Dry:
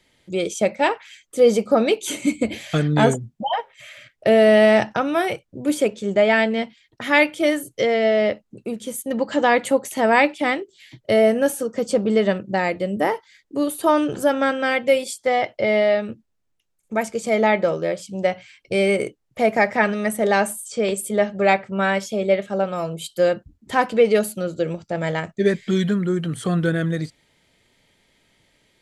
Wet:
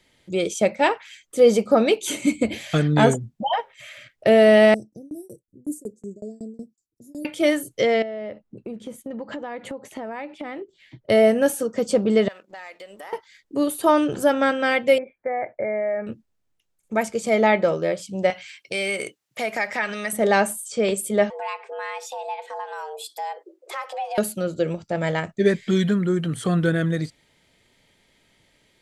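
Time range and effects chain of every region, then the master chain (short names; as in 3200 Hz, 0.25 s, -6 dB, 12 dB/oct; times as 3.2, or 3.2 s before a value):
4.74–7.25 inverse Chebyshev band-stop 960–3200 Hz, stop band 60 dB + low shelf 370 Hz -10 dB + tremolo saw down 5.4 Hz, depth 100%
8.02–11.1 LPF 1400 Hz 6 dB/oct + compressor 16:1, threshold -28 dBFS
12.28–13.13 HPF 870 Hz + sample leveller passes 1 + compressor 4:1, threshold -39 dBFS
14.98–16.07 compressor 5:1, threshold -20 dBFS + rippled Chebyshev low-pass 2400 Hz, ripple 6 dB
18.3–20.13 HPF 110 Hz + tilt shelf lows -7.5 dB, about 900 Hz + compressor 2:1, threshold -26 dBFS
21.3–24.18 frequency shift +290 Hz + compressor 2.5:1, threshold -33 dBFS
whole clip: dry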